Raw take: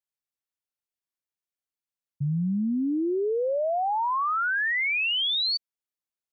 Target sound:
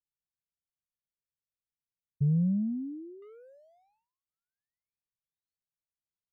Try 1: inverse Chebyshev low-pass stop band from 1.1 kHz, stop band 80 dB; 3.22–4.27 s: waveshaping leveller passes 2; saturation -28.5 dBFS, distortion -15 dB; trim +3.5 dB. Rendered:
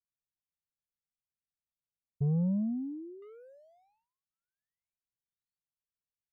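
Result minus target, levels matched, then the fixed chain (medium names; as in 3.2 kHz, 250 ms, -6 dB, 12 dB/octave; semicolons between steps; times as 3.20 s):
saturation: distortion +11 dB
inverse Chebyshev low-pass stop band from 1.1 kHz, stop band 80 dB; 3.22–4.27 s: waveshaping leveller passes 2; saturation -21.5 dBFS, distortion -25 dB; trim +3.5 dB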